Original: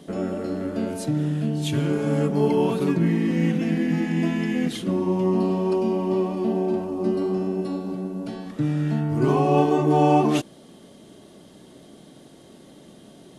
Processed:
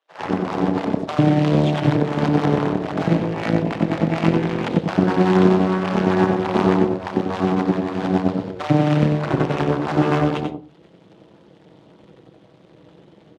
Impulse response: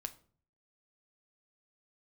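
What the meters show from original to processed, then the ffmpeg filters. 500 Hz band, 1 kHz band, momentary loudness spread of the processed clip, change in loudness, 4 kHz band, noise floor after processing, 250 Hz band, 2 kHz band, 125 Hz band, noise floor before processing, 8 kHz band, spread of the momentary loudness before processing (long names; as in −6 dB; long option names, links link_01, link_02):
+2.5 dB, +4.0 dB, 6 LU, +3.5 dB, +4.5 dB, −51 dBFS, +3.5 dB, +7.5 dB, +4.5 dB, −49 dBFS, can't be measured, 9 LU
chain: -filter_complex "[0:a]lowshelf=frequency=310:gain=9,aecho=1:1:6.2:0.75,dynaudnorm=framelen=110:gausssize=3:maxgain=14dB,aeval=exprs='0.944*(cos(1*acos(clip(val(0)/0.944,-1,1)))-cos(1*PI/2))+0.106*(cos(2*acos(clip(val(0)/0.944,-1,1)))-cos(2*PI/2))+0.335*(cos(3*acos(clip(val(0)/0.944,-1,1)))-cos(3*PI/2))+0.0841*(cos(4*acos(clip(val(0)/0.944,-1,1)))-cos(4*PI/2))+0.0944*(cos(6*acos(clip(val(0)/0.944,-1,1)))-cos(6*PI/2))':channel_layout=same,acrusher=bits=3:mode=log:mix=0:aa=0.000001,highpass=120,lowpass=3000,acrossover=split=710[link_01][link_02];[link_01]adelay=100[link_03];[link_03][link_02]amix=inputs=2:normalize=0,asplit=2[link_04][link_05];[1:a]atrim=start_sample=2205,adelay=92[link_06];[link_05][link_06]afir=irnorm=-1:irlink=0,volume=-3.5dB[link_07];[link_04][link_07]amix=inputs=2:normalize=0,volume=-1.5dB"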